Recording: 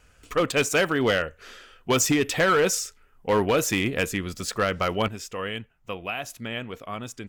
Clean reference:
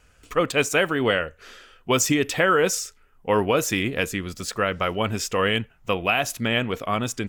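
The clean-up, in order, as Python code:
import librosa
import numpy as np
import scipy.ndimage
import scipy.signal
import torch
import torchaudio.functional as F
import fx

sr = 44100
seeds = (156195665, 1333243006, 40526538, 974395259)

y = fx.fix_declip(x, sr, threshold_db=-15.5)
y = fx.fix_level(y, sr, at_s=5.08, step_db=9.5)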